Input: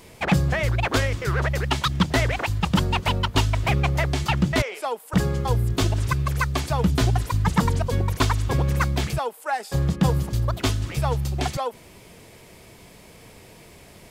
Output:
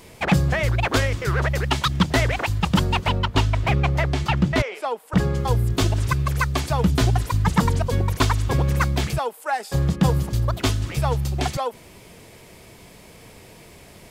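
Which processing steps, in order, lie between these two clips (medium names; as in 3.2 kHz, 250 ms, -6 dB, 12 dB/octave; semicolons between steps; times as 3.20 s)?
3.05–5.35 s: treble shelf 5.9 kHz -10 dB; trim +1.5 dB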